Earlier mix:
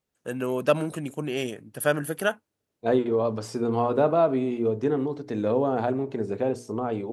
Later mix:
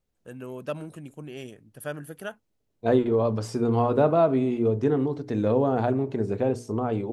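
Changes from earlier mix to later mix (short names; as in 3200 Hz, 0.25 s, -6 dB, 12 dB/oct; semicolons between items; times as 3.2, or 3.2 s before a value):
first voice -11.5 dB; master: remove HPF 210 Hz 6 dB/oct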